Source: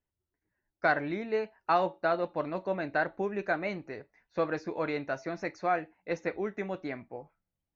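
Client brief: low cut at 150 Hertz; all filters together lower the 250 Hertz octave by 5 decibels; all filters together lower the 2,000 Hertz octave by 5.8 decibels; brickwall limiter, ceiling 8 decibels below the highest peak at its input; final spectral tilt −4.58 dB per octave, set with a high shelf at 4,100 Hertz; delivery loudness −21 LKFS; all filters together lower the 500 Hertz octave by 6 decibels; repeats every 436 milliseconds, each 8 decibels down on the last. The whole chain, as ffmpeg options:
ffmpeg -i in.wav -af "highpass=150,equalizer=frequency=250:width_type=o:gain=-3.5,equalizer=frequency=500:width_type=o:gain=-6.5,equalizer=frequency=2000:width_type=o:gain=-7,highshelf=frequency=4100:gain=-5,alimiter=level_in=1.5dB:limit=-24dB:level=0:latency=1,volume=-1.5dB,aecho=1:1:436|872|1308|1744|2180:0.398|0.159|0.0637|0.0255|0.0102,volume=18.5dB" out.wav

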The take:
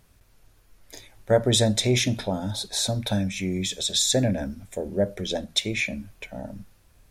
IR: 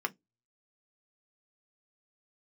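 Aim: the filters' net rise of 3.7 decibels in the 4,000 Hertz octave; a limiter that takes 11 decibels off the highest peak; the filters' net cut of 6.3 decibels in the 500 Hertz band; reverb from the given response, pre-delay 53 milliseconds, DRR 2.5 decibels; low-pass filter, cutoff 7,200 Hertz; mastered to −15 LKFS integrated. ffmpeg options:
-filter_complex "[0:a]lowpass=7200,equalizer=frequency=500:width_type=o:gain=-8,equalizer=frequency=4000:width_type=o:gain=4.5,alimiter=limit=-15.5dB:level=0:latency=1,asplit=2[link_01][link_02];[1:a]atrim=start_sample=2205,adelay=53[link_03];[link_02][link_03]afir=irnorm=-1:irlink=0,volume=-7.5dB[link_04];[link_01][link_04]amix=inputs=2:normalize=0,volume=11dB"

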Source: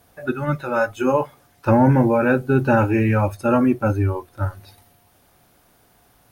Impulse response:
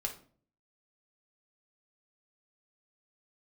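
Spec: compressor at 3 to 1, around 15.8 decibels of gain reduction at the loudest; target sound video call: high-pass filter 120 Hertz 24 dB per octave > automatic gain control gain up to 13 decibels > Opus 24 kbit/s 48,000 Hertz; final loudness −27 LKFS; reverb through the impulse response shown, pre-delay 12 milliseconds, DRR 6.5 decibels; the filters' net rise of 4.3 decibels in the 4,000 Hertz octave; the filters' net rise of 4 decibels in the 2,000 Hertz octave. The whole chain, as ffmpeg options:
-filter_complex "[0:a]equalizer=frequency=2000:width_type=o:gain=5.5,equalizer=frequency=4000:width_type=o:gain=3.5,acompressor=threshold=-33dB:ratio=3,asplit=2[link_01][link_02];[1:a]atrim=start_sample=2205,adelay=12[link_03];[link_02][link_03]afir=irnorm=-1:irlink=0,volume=-8dB[link_04];[link_01][link_04]amix=inputs=2:normalize=0,highpass=frequency=120:width=0.5412,highpass=frequency=120:width=1.3066,dynaudnorm=maxgain=13dB,volume=5.5dB" -ar 48000 -c:a libopus -b:a 24k

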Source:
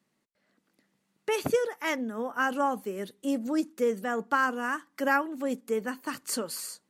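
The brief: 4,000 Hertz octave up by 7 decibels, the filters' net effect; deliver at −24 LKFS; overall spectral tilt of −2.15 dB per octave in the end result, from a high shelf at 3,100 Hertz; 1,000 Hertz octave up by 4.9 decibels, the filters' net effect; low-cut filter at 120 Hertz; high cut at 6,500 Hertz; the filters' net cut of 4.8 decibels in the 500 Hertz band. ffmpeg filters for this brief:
ffmpeg -i in.wav -af "highpass=120,lowpass=6500,equalizer=frequency=500:width_type=o:gain=-7,equalizer=frequency=1000:width_type=o:gain=7,highshelf=frequency=3100:gain=6.5,equalizer=frequency=4000:width_type=o:gain=4.5,volume=3.5dB" out.wav

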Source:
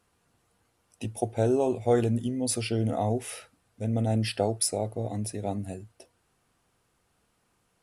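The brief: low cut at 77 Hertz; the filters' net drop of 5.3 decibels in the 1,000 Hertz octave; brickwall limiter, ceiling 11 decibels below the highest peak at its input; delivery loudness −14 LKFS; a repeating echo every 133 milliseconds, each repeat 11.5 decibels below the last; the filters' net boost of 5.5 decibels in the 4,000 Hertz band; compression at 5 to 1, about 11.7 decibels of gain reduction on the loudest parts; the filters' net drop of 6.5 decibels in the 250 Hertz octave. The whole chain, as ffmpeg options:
ffmpeg -i in.wav -af "highpass=77,equalizer=frequency=250:width_type=o:gain=-7.5,equalizer=frequency=1000:width_type=o:gain=-8.5,equalizer=frequency=4000:width_type=o:gain=8,acompressor=threshold=-34dB:ratio=5,alimiter=level_in=6.5dB:limit=-24dB:level=0:latency=1,volume=-6.5dB,aecho=1:1:133|266|399:0.266|0.0718|0.0194,volume=26.5dB" out.wav

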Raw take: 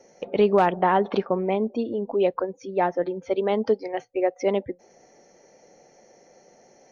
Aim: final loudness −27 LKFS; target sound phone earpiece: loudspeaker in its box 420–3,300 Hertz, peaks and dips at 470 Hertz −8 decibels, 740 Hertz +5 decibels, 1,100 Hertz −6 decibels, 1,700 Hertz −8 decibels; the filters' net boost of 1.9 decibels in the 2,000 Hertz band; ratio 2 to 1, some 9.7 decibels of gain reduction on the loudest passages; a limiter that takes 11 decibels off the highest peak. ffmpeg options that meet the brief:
ffmpeg -i in.wav -af "equalizer=frequency=2000:width_type=o:gain=8,acompressor=threshold=-32dB:ratio=2,alimiter=level_in=2.5dB:limit=-24dB:level=0:latency=1,volume=-2.5dB,highpass=420,equalizer=frequency=470:width_type=q:width=4:gain=-8,equalizer=frequency=740:width_type=q:width=4:gain=5,equalizer=frequency=1100:width_type=q:width=4:gain=-6,equalizer=frequency=1700:width_type=q:width=4:gain=-8,lowpass=frequency=3300:width=0.5412,lowpass=frequency=3300:width=1.3066,volume=14dB" out.wav

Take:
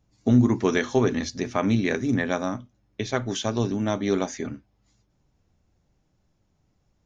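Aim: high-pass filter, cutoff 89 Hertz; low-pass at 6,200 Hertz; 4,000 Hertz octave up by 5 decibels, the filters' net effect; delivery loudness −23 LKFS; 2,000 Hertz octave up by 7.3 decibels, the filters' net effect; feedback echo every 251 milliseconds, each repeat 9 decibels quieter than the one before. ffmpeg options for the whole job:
ffmpeg -i in.wav -af "highpass=89,lowpass=6200,equalizer=frequency=2000:width_type=o:gain=8,equalizer=frequency=4000:width_type=o:gain=4,aecho=1:1:251|502|753|1004:0.355|0.124|0.0435|0.0152" out.wav

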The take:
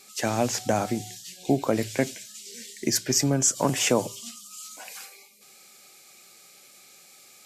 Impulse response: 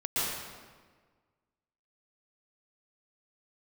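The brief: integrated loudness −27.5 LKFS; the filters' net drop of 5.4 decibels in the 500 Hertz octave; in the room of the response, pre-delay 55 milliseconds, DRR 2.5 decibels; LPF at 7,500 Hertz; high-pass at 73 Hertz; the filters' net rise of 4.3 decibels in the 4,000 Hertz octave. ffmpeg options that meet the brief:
-filter_complex "[0:a]highpass=73,lowpass=7500,equalizer=frequency=500:width_type=o:gain=-7,equalizer=frequency=4000:width_type=o:gain=7,asplit=2[link_01][link_02];[1:a]atrim=start_sample=2205,adelay=55[link_03];[link_02][link_03]afir=irnorm=-1:irlink=0,volume=-11.5dB[link_04];[link_01][link_04]amix=inputs=2:normalize=0,volume=-2.5dB"

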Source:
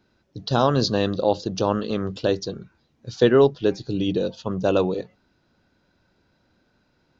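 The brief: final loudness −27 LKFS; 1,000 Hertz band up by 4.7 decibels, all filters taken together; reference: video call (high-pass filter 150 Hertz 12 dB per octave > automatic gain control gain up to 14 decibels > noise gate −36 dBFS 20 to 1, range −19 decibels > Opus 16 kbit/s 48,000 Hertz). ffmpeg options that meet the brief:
ffmpeg -i in.wav -af "highpass=150,equalizer=frequency=1000:width_type=o:gain=6,dynaudnorm=maxgain=14dB,agate=range=-19dB:threshold=-36dB:ratio=20,volume=-5dB" -ar 48000 -c:a libopus -b:a 16k out.opus

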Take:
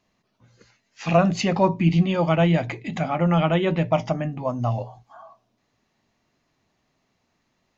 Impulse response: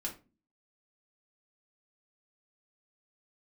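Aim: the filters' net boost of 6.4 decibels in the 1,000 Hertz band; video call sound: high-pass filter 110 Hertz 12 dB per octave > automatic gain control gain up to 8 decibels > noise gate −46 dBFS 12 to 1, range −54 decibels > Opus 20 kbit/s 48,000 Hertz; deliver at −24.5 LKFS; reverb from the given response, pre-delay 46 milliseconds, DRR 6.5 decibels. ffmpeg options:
-filter_complex "[0:a]equalizer=frequency=1000:width_type=o:gain=8.5,asplit=2[link_01][link_02];[1:a]atrim=start_sample=2205,adelay=46[link_03];[link_02][link_03]afir=irnorm=-1:irlink=0,volume=-7dB[link_04];[link_01][link_04]amix=inputs=2:normalize=0,highpass=110,dynaudnorm=maxgain=8dB,agate=range=-54dB:threshold=-46dB:ratio=12,volume=-5dB" -ar 48000 -c:a libopus -b:a 20k

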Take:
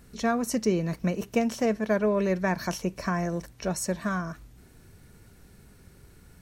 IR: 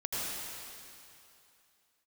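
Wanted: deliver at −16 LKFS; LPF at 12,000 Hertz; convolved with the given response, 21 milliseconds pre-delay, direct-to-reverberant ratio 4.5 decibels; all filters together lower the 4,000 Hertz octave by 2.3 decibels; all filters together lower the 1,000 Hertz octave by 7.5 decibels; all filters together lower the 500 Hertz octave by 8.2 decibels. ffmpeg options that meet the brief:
-filter_complex "[0:a]lowpass=12000,equalizer=frequency=500:width_type=o:gain=-9,equalizer=frequency=1000:width_type=o:gain=-6.5,equalizer=frequency=4000:width_type=o:gain=-3,asplit=2[link_01][link_02];[1:a]atrim=start_sample=2205,adelay=21[link_03];[link_02][link_03]afir=irnorm=-1:irlink=0,volume=-10.5dB[link_04];[link_01][link_04]amix=inputs=2:normalize=0,volume=14.5dB"

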